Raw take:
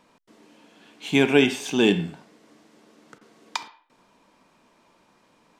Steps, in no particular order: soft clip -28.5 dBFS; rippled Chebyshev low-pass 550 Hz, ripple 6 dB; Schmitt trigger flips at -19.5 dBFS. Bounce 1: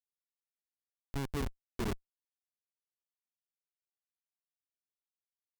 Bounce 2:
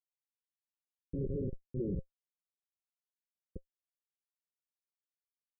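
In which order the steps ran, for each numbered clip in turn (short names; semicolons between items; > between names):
rippled Chebyshev low-pass > Schmitt trigger > soft clip; Schmitt trigger > soft clip > rippled Chebyshev low-pass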